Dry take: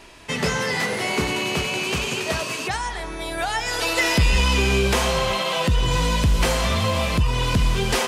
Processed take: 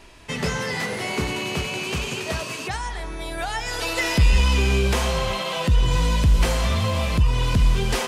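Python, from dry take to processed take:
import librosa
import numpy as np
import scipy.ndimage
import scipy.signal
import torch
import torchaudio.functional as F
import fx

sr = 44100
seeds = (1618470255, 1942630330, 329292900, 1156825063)

y = fx.low_shelf(x, sr, hz=120.0, db=7.5)
y = y * 10.0 ** (-3.5 / 20.0)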